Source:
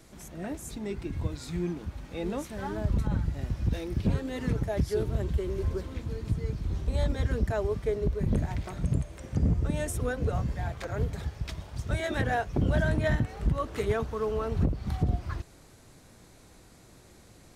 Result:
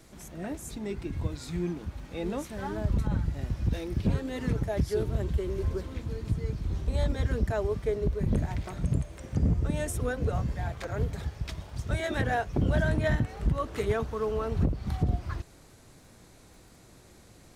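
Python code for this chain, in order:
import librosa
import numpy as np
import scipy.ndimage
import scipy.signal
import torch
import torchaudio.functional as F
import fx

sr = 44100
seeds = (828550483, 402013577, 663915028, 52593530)

y = fx.dmg_crackle(x, sr, seeds[0], per_s=37.0, level_db=-54.0)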